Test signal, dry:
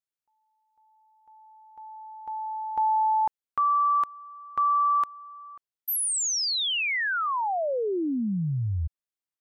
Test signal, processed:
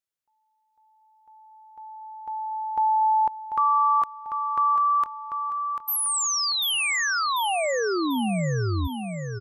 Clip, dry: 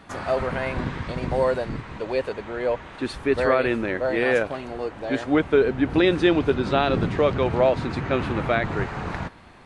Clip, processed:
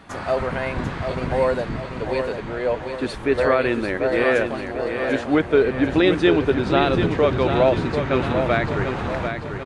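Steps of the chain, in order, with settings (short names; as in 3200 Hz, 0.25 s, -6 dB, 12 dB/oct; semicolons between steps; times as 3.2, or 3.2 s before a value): feedback echo 0.742 s, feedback 48%, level -7 dB; gain +1.5 dB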